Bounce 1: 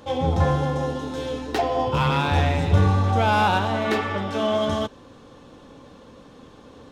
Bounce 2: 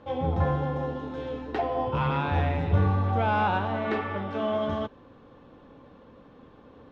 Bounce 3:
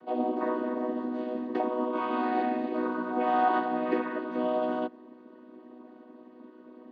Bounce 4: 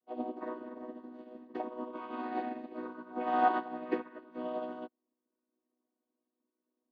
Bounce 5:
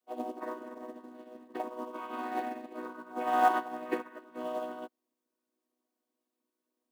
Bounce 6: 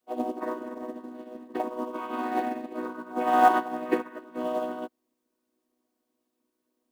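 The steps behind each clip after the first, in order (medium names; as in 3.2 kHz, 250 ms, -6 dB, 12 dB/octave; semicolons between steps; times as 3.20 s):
low-pass 2.4 kHz 12 dB/octave; trim -5 dB
vocoder on a held chord major triad, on B3
upward expansion 2.5:1, over -46 dBFS
bass shelf 360 Hz -9 dB; in parallel at -4.5 dB: short-mantissa float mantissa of 2-bit
bass shelf 390 Hz +6 dB; trim +4.5 dB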